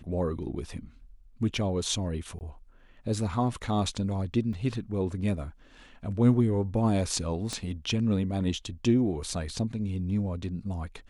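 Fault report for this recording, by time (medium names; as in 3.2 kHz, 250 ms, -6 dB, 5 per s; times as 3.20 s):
2.39–2.41 s: dropout 19 ms
4.53 s: dropout 2.4 ms
7.53 s: pop -19 dBFS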